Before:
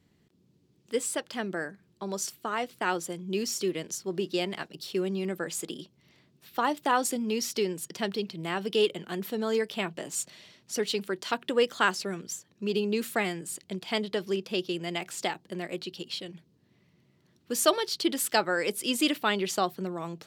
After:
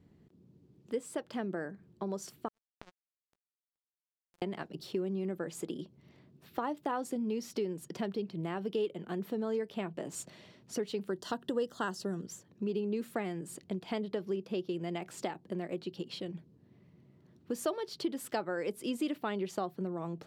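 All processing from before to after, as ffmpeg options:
ffmpeg -i in.wav -filter_complex "[0:a]asettb=1/sr,asplit=3[link_01][link_02][link_03];[link_01]atrim=end=2.484[link_04];[link_02]atrim=start=2.48:end=4.42,asetpts=PTS-STARTPTS,afade=type=in:duration=0.004:curve=qsin,afade=type=out:start_time=1.936:duration=0.004:curve=qsin,acompressor=threshold=-39dB:ratio=2.5:attack=3.2:release=140:knee=1:detection=peak,acrusher=bits=3:mix=0:aa=0.5[link_05];[link_03]atrim=start=4.416[link_06];[link_04][link_05]acrossfade=duration=0.004:curve1=hsin:curve2=qsin[link_07];[link_07][link_06]acrossfade=duration=0.004:curve1=qsin:curve2=hsin,asettb=1/sr,asplit=3[link_08][link_09][link_10];[link_08]atrim=end=11.084[link_11];[link_09]atrim=start=11.08:end=12.26,asetpts=PTS-STARTPTS,afade=type=in:duration=0.004:curve=qsin,afade=type=out:start_time=1.176:duration=0.004:curve=qsin,asuperstop=centerf=2300:order=4:qfactor=3,bass=frequency=250:gain=4,treble=frequency=4000:gain=8[link_12];[link_10]atrim=start=12.256[link_13];[link_11][link_12]acrossfade=duration=0.004:curve1=hsin:curve2=qsin[link_14];[link_14][link_13]acrossfade=duration=0.004:curve1=qsin:curve2=hsin,tiltshelf=frequency=1500:gain=7.5,acompressor=threshold=-33dB:ratio=2.5,volume=-2.5dB" out.wav

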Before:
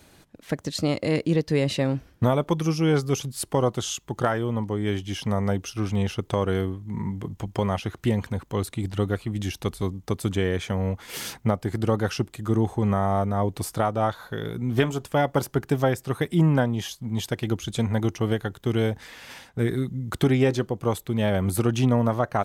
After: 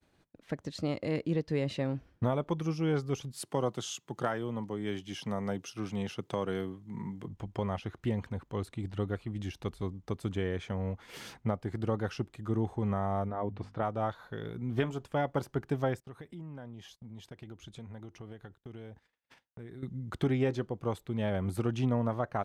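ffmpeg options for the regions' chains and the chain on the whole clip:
ffmpeg -i in.wav -filter_complex "[0:a]asettb=1/sr,asplit=3[link_01][link_02][link_03];[link_01]atrim=end=3.334[link_04];[link_02]atrim=start=3.33:end=7.26,asetpts=PTS-STARTPTS,afade=type=in:duration=0.004:curve=qsin,afade=type=out:start_time=3.926:duration=0.004:curve=qsin,highpass=frequency=120:width=0.5412,highpass=frequency=120:width=1.3066,highshelf=frequency=3800:gain=8[link_05];[link_03]atrim=start=7.256[link_06];[link_04][link_05]acrossfade=duration=0.004:curve1=hsin:curve2=qsin[link_07];[link_07][link_06]acrossfade=duration=0.004:curve1=qsin:curve2=hsin,asettb=1/sr,asplit=3[link_08][link_09][link_10];[link_08]atrim=end=13.284[link_11];[link_09]atrim=start=13.28:end=13.83,asetpts=PTS-STARTPTS,afade=type=in:duration=0.004:curve=qsin,afade=type=out:start_time=0.546:duration=0.004:curve=qsin,lowpass=2700,bandreject=frequency=50:width_type=h:width=6,bandreject=frequency=100:width_type=h:width=6,bandreject=frequency=150:width_type=h:width=6,bandreject=frequency=200:width_type=h:width=6,bandreject=frequency=250:width_type=h:width=6[link_12];[link_10]atrim=start=13.826[link_13];[link_11][link_12]acrossfade=duration=0.004:curve1=hsin:curve2=qsin[link_14];[link_14][link_13]acrossfade=duration=0.004:curve1=qsin:curve2=hsin,asettb=1/sr,asplit=3[link_15][link_16][link_17];[link_15]atrim=end=16.004[link_18];[link_16]atrim=start=16:end=19.83,asetpts=PTS-STARTPTS,afade=type=in:duration=0.004:curve=qsin,afade=type=out:start_time=3.826:duration=0.004:curve=qsin,agate=range=-19dB:threshold=-42dB:ratio=16:release=100:detection=peak,acompressor=threshold=-36dB:ratio=4:attack=3.2:release=140:knee=1:detection=peak[link_19];[link_17]atrim=start=19.826[link_20];[link_18][link_19]acrossfade=duration=0.004:curve1=hsin:curve2=qsin[link_21];[link_21][link_20]acrossfade=duration=0.004:curve1=qsin:curve2=hsin,aemphasis=mode=reproduction:type=50kf,agate=range=-33dB:threshold=-49dB:ratio=3:detection=peak,volume=-8.5dB" out.wav

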